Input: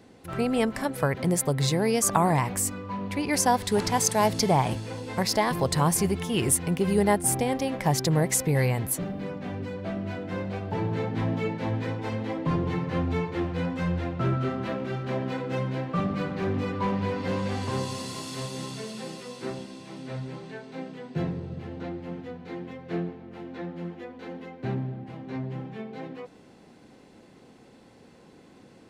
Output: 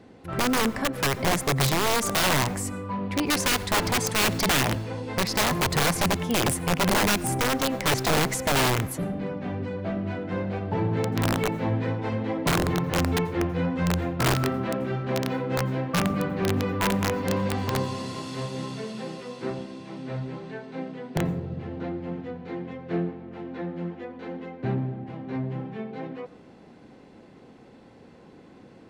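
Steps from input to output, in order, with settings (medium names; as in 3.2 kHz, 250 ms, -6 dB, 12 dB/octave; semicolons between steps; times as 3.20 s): low-pass 2.7 kHz 6 dB/octave; integer overflow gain 19.5 dB; plate-style reverb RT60 0.63 s, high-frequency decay 0.55×, pre-delay 75 ms, DRR 19 dB; trim +3 dB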